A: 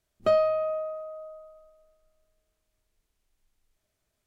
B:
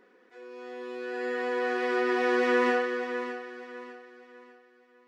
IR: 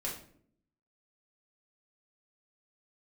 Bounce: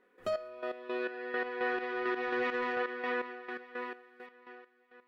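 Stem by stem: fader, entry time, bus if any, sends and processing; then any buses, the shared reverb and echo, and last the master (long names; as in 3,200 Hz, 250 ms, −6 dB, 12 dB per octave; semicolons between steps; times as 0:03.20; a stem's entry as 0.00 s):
−10.5 dB, 0.00 s, no send, high-shelf EQ 4,200 Hz +11 dB
+3.0 dB, 0.00 s, send −9 dB, low-pass filter 4,100 Hz 24 dB per octave; low-shelf EQ 170 Hz −7 dB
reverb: on, RT60 0.60 s, pre-delay 5 ms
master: soft clipping −12.5 dBFS, distortion −23 dB; gate pattern "..xx...x" 168 BPM −12 dB; brickwall limiter −25 dBFS, peak gain reduction 10.5 dB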